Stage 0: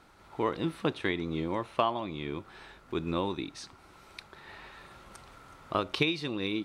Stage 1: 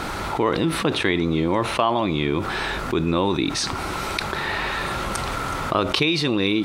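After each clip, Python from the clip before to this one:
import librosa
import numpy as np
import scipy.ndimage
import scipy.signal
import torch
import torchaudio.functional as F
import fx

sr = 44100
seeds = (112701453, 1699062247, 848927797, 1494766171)

y = fx.env_flatten(x, sr, amount_pct=70)
y = F.gain(torch.from_numpy(y), 5.0).numpy()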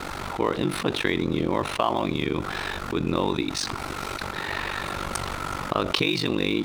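y = np.sign(x) * np.maximum(np.abs(x) - 10.0 ** (-40.0 / 20.0), 0.0)
y = y * np.sin(2.0 * np.pi * 24.0 * np.arange(len(y)) / sr)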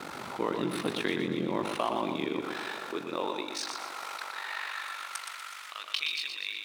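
y = fx.filter_sweep_highpass(x, sr, from_hz=180.0, to_hz=2100.0, start_s=1.73, end_s=5.66, q=1.0)
y = fx.echo_feedback(y, sr, ms=120, feedback_pct=43, wet_db=-6.0)
y = F.gain(torch.from_numpy(y), -7.5).numpy()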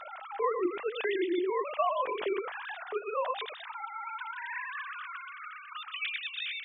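y = fx.sine_speech(x, sr)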